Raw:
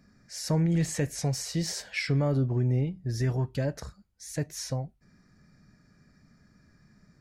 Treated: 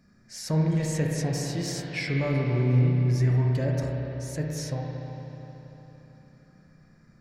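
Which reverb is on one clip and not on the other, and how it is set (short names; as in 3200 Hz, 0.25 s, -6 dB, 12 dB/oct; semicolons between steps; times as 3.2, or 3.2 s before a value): spring tank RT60 3.8 s, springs 32/58 ms, chirp 40 ms, DRR -1.5 dB; gain -1.5 dB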